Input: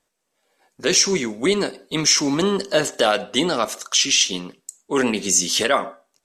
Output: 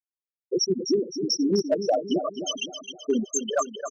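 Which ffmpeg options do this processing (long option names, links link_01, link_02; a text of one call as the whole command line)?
ffmpeg -i in.wav -af "asoftclip=type=tanh:threshold=-10.5dB,afftfilt=real='re*gte(hypot(re,im),0.501)':imag='im*gte(hypot(re,im),0.501)':win_size=1024:overlap=0.75,aecho=1:1:417|834|1251|1668|2085:0.355|0.163|0.0751|0.0345|0.0159,asoftclip=type=hard:threshold=-14.5dB,atempo=1.6" out.wav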